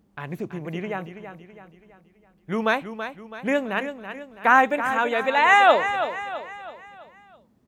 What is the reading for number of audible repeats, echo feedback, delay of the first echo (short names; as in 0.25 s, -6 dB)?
4, 46%, 0.329 s